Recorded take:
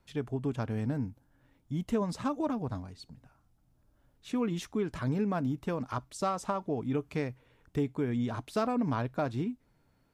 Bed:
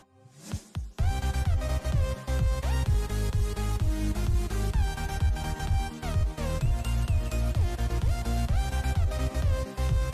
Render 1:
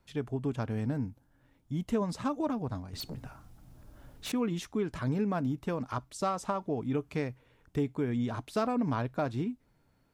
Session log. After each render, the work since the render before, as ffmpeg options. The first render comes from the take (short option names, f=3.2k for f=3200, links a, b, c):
-filter_complex "[0:a]asettb=1/sr,asplit=3[a][b][c];[a]atrim=end=2.934[d];[b]atrim=start=2.93:end=4.32,asetpts=PTS-STARTPTS,afade=t=in:d=0.004:c=qsin,afade=t=out:st=1.386:d=0.004:c=qsin,aeval=exprs='0.0188*sin(PI/2*3.55*val(0)/0.0188)':c=same[e];[c]atrim=start=4.316[f];[d][e]acrossfade=d=0.004:c1=hsin:c2=qsin[g];[g][f]acrossfade=d=0.004:c1=qsin:c2=hsin"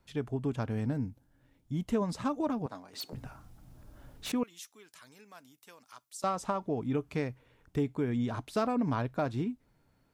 -filter_complex "[0:a]asettb=1/sr,asplit=3[a][b][c];[a]atrim=end=0.934[d];[b]atrim=start=0.93:end=1.74,asetpts=PTS-STARTPTS,afade=t=in:d=0.004:c=qsin,afade=t=out:st=0.806:d=0.004:c=qsin,equalizer=f=1.1k:t=o:w=1.3:g=-4.5[e];[c]atrim=start=1.736[f];[d][e]acrossfade=d=0.004:c1=hsin:c2=qsin[g];[g][f]acrossfade=d=0.004:c1=qsin:c2=hsin,asettb=1/sr,asplit=3[h][i][j];[h]atrim=end=2.664[k];[i]atrim=start=2.66:end=3.13,asetpts=PTS-STARTPTS,afade=t=in:d=0.004:c=qsin,afade=t=out:st=0.466:d=0.004:c=qsin,highpass=370[l];[j]atrim=start=3.126[m];[k][l]acrossfade=d=0.004:c1=hsin:c2=qsin[n];[n][m]acrossfade=d=0.004:c1=qsin:c2=hsin,asettb=1/sr,asplit=3[o][p][q];[o]atrim=end=4.434[r];[p]atrim=start=4.43:end=6.24,asetpts=PTS-STARTPTS,afade=t=in:d=0.004:c=qsin,afade=t=out:st=1.806:d=0.004:c=qsin,aderivative[s];[q]atrim=start=6.236[t];[r][s]acrossfade=d=0.004:c1=hsin:c2=qsin[u];[u][t]acrossfade=d=0.004:c1=qsin:c2=hsin"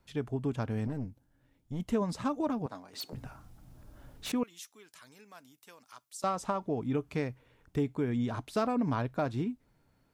-filter_complex "[0:a]asettb=1/sr,asplit=3[a][b][c];[a]atrim=end=0.874[d];[b]atrim=start=0.87:end=1.8,asetpts=PTS-STARTPTS,afade=t=in:d=0.004:c=qsin,afade=t=out:st=0.926:d=0.004:c=qsin,aeval=exprs='(tanh(31.6*val(0)+0.55)-tanh(0.55))/31.6':c=same[e];[c]atrim=start=1.796[f];[d][e]acrossfade=d=0.004:c1=hsin:c2=qsin[g];[g][f]acrossfade=d=0.004:c1=qsin:c2=hsin"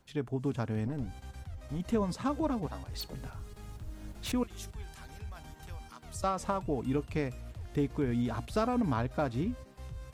-filter_complex "[1:a]volume=-17.5dB[a];[0:a][a]amix=inputs=2:normalize=0"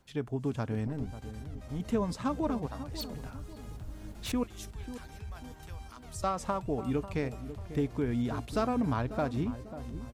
-filter_complex "[0:a]asplit=2[a][b];[b]adelay=543,lowpass=f=850:p=1,volume=-11.5dB,asplit=2[c][d];[d]adelay=543,lowpass=f=850:p=1,volume=0.48,asplit=2[e][f];[f]adelay=543,lowpass=f=850:p=1,volume=0.48,asplit=2[g][h];[h]adelay=543,lowpass=f=850:p=1,volume=0.48,asplit=2[i][j];[j]adelay=543,lowpass=f=850:p=1,volume=0.48[k];[a][c][e][g][i][k]amix=inputs=6:normalize=0"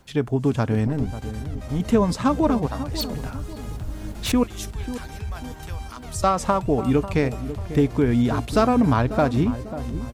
-af "volume=11.5dB"